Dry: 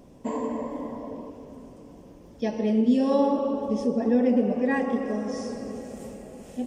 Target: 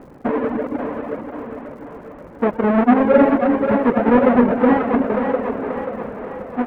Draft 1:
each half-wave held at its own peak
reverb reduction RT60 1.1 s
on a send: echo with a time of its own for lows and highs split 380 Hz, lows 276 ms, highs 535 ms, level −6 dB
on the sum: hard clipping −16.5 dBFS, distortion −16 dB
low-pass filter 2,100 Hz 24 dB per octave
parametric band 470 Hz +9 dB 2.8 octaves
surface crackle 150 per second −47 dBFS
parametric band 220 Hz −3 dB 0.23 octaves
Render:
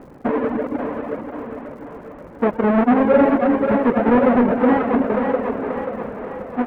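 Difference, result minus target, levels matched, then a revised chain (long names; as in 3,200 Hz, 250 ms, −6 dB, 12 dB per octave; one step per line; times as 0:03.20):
hard clipping: distortion +34 dB
each half-wave held at its own peak
reverb reduction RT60 1.1 s
on a send: echo with a time of its own for lows and highs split 380 Hz, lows 276 ms, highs 535 ms, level −6 dB
on the sum: hard clipping −10 dBFS, distortion −50 dB
low-pass filter 2,100 Hz 24 dB per octave
parametric band 470 Hz +9 dB 2.8 octaves
surface crackle 150 per second −47 dBFS
parametric band 220 Hz −3 dB 0.23 octaves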